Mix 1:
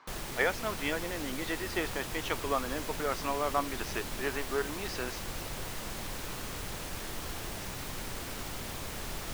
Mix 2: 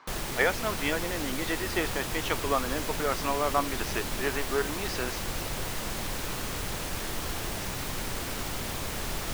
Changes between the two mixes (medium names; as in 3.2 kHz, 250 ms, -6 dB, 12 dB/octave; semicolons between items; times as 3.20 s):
speech +3.5 dB; background +5.5 dB